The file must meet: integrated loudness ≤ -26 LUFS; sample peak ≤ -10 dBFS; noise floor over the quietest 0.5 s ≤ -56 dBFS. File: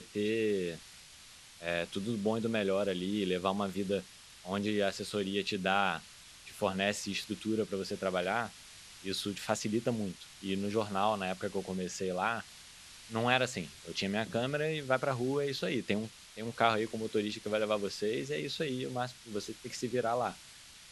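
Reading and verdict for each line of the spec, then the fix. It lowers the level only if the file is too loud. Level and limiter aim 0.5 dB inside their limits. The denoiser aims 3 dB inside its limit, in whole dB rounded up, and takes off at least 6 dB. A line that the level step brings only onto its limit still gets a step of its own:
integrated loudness -34.0 LUFS: OK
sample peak -10.5 dBFS: OK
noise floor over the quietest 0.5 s -54 dBFS: fail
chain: denoiser 6 dB, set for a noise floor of -54 dBFS

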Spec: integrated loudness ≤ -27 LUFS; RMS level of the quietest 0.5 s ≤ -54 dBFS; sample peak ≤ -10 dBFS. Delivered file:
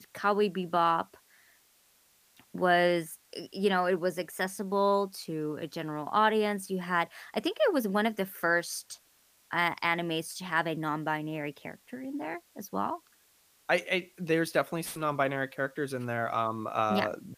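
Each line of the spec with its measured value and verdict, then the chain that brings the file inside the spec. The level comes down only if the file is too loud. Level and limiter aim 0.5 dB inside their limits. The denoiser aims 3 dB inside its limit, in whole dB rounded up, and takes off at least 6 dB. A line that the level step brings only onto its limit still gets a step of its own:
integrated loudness -30.0 LUFS: OK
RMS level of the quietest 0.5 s -65 dBFS: OK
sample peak -12.0 dBFS: OK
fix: none

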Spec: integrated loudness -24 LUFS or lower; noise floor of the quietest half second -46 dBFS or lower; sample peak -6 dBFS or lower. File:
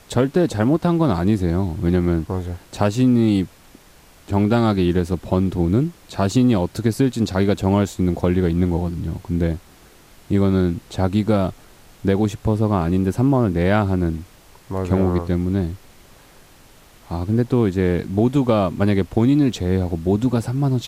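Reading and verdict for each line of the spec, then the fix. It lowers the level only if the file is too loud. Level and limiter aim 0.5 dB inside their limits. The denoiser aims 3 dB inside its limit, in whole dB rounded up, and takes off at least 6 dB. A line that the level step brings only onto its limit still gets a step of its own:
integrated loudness -20.0 LUFS: fail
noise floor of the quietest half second -48 dBFS: OK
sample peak -4.0 dBFS: fail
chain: gain -4.5 dB

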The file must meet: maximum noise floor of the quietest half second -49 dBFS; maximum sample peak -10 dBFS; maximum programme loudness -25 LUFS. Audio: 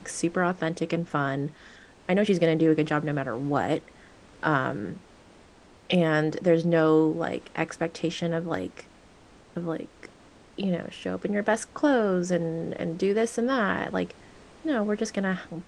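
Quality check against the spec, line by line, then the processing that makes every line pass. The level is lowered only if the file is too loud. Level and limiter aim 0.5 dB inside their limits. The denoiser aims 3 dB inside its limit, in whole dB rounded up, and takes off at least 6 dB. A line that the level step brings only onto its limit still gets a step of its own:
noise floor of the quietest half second -54 dBFS: OK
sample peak -7.5 dBFS: fail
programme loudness -26.5 LUFS: OK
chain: limiter -10.5 dBFS

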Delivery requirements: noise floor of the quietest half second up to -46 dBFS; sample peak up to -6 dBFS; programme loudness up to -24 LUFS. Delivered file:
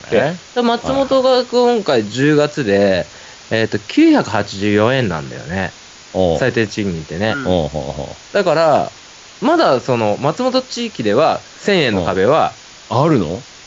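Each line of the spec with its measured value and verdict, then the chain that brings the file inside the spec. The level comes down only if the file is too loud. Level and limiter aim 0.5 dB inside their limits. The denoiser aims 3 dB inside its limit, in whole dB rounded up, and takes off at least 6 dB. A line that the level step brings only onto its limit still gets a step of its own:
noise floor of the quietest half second -39 dBFS: fail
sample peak -2.0 dBFS: fail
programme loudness -16.0 LUFS: fail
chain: gain -8.5 dB

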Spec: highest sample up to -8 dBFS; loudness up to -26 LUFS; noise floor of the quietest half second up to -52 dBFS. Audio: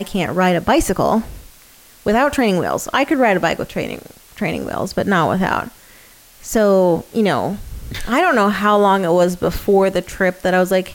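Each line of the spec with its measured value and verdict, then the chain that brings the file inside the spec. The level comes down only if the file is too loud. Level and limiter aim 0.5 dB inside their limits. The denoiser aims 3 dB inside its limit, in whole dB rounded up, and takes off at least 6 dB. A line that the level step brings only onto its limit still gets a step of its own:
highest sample -4.5 dBFS: fail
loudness -17.0 LUFS: fail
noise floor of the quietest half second -46 dBFS: fail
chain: gain -9.5 dB

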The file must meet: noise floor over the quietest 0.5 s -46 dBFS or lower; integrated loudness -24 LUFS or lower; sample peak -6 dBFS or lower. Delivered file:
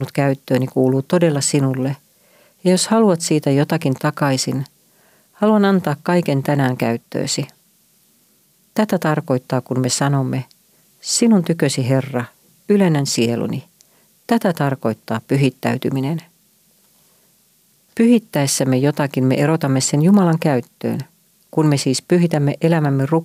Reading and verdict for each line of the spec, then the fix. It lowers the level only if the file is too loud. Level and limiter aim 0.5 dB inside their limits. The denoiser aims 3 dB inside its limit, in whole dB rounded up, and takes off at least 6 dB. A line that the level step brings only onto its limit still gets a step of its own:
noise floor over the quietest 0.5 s -57 dBFS: OK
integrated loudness -17.5 LUFS: fail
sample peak -3.5 dBFS: fail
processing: gain -7 dB

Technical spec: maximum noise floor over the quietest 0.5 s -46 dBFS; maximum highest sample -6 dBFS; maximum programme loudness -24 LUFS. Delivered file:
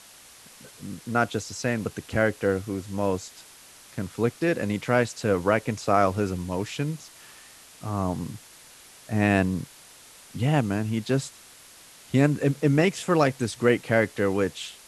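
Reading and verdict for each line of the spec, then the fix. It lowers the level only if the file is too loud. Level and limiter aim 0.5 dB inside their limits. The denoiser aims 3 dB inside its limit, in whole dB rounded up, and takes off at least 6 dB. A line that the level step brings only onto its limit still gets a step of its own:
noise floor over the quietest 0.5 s -50 dBFS: OK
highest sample -6.5 dBFS: OK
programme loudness -25.5 LUFS: OK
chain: none

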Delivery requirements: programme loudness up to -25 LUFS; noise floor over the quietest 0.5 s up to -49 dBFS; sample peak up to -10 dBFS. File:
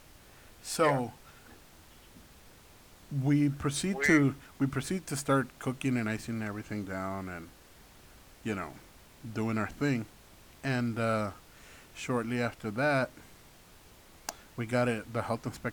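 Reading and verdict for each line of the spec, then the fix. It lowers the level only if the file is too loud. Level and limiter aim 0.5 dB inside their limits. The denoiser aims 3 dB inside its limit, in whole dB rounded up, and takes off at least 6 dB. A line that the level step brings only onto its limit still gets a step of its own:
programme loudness -32.0 LUFS: OK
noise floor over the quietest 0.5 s -56 dBFS: OK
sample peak -12.0 dBFS: OK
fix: none

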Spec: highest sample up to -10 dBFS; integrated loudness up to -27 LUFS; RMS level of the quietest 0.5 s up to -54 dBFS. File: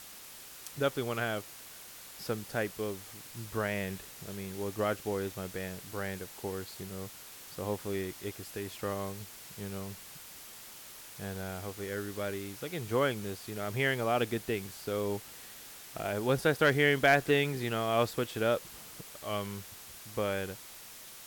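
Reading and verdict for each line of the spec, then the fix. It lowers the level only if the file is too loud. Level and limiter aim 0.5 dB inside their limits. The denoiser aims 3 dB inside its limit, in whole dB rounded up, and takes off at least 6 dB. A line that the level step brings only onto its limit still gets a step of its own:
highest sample -14.5 dBFS: OK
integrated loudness -33.5 LUFS: OK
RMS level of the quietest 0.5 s -49 dBFS: fail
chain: denoiser 8 dB, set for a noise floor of -49 dBFS

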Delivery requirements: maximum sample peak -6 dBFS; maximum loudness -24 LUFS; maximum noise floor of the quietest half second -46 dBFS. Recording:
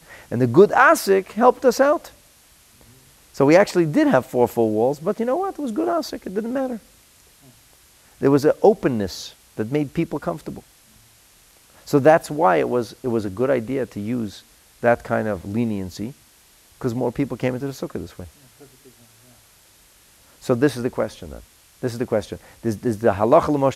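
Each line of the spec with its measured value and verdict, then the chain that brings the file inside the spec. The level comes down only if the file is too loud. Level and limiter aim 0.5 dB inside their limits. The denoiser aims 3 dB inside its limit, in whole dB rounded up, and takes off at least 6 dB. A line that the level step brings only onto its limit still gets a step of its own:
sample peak -2.0 dBFS: fail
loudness -20.5 LUFS: fail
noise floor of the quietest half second -53 dBFS: OK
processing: gain -4 dB; limiter -6.5 dBFS

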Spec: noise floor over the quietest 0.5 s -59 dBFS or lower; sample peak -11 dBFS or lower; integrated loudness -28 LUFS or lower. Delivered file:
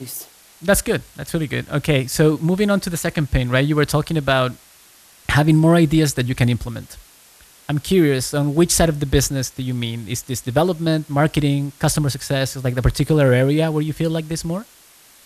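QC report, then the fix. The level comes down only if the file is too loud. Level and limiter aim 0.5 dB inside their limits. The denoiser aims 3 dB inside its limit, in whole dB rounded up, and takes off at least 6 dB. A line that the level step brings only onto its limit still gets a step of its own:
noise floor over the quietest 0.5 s -49 dBFS: fail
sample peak -3.5 dBFS: fail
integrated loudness -19.0 LUFS: fail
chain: denoiser 6 dB, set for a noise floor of -49 dBFS; gain -9.5 dB

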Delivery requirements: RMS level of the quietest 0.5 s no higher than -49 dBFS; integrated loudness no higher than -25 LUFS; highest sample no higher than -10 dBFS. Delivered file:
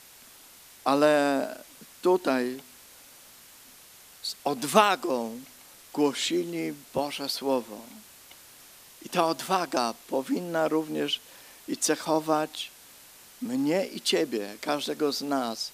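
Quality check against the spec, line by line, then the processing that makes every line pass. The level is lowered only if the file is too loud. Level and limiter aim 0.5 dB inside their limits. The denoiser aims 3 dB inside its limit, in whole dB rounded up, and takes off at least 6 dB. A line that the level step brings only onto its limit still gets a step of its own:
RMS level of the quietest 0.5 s -52 dBFS: OK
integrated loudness -27.5 LUFS: OK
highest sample -4.0 dBFS: fail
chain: limiter -10.5 dBFS

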